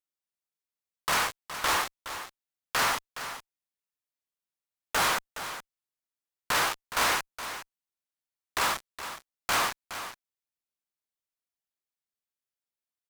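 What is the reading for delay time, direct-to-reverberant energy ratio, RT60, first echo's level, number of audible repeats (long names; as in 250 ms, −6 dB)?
417 ms, no reverb audible, no reverb audible, −11.5 dB, 1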